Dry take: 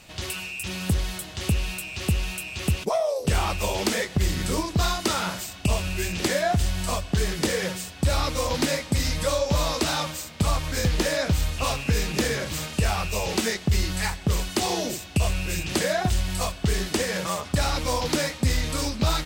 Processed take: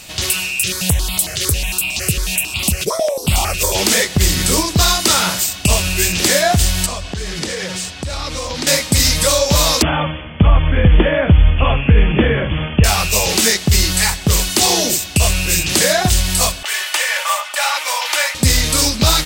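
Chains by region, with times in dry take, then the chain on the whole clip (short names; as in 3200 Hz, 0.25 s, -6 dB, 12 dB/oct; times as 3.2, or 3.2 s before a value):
0.63–3.75 upward compressor, threshold -24 dBFS + step phaser 11 Hz 240–1700 Hz
6.86–8.67 compressor, threshold -29 dBFS + air absorption 63 m
9.82–12.84 brick-wall FIR low-pass 3500 Hz + tilt -2 dB/oct
16.63–18.35 HPF 740 Hz 24 dB/oct + resonant high shelf 3500 Hz -7 dB, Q 1.5 + comb 3.4 ms, depth 52%
whole clip: high shelf 3200 Hz +11 dB; maximiser +9 dB; gain -1 dB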